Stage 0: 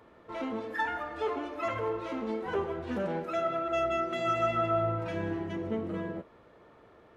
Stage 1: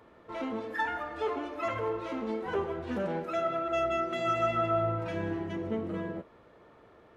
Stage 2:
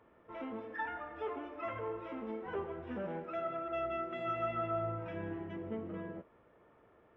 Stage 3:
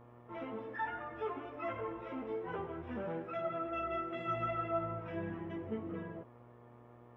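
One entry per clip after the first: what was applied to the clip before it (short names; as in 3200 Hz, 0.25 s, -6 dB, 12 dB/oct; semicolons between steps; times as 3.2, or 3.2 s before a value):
nothing audible
polynomial smoothing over 25 samples; gain -7.5 dB
chorus voices 4, 0.35 Hz, delay 15 ms, depth 4 ms; buzz 120 Hz, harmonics 10, -62 dBFS -4 dB/oct; gain +3.5 dB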